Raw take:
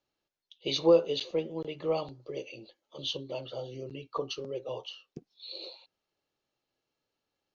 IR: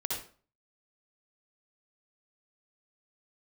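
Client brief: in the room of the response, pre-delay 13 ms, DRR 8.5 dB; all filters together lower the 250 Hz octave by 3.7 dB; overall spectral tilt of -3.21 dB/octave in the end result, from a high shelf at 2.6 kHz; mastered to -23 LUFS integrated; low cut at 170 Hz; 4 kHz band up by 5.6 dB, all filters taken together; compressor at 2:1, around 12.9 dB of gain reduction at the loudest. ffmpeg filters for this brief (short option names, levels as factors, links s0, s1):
-filter_complex "[0:a]highpass=170,equalizer=f=250:t=o:g=-5.5,highshelf=f=2600:g=3.5,equalizer=f=4000:t=o:g=4,acompressor=threshold=0.00794:ratio=2,asplit=2[s0][s1];[1:a]atrim=start_sample=2205,adelay=13[s2];[s1][s2]afir=irnorm=-1:irlink=0,volume=0.237[s3];[s0][s3]amix=inputs=2:normalize=0,volume=7.5"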